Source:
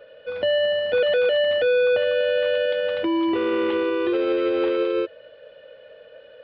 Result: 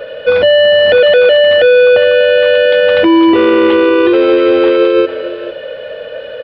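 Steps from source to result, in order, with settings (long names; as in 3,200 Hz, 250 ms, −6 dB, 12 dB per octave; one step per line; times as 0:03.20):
single-tap delay 451 ms −21.5 dB
on a send at −21 dB: convolution reverb RT60 2.1 s, pre-delay 110 ms
on the sum: boost into a limiter +22 dB
level −1 dB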